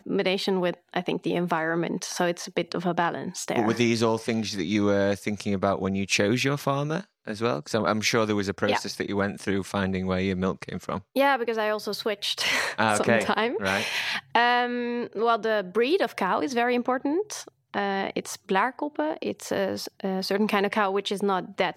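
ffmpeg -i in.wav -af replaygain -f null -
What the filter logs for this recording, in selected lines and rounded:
track_gain = +6.2 dB
track_peak = 0.343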